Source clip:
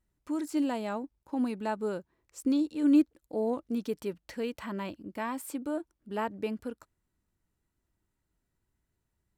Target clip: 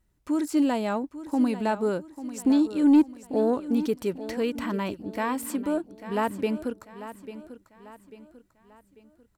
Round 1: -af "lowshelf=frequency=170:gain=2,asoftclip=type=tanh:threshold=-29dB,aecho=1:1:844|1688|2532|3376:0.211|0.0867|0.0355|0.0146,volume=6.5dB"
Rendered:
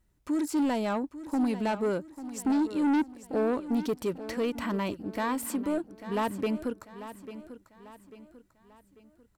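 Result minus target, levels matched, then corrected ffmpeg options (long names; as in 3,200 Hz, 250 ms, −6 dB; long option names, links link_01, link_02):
soft clipping: distortion +11 dB
-af "lowshelf=frequency=170:gain=2,asoftclip=type=tanh:threshold=-18dB,aecho=1:1:844|1688|2532|3376:0.211|0.0867|0.0355|0.0146,volume=6.5dB"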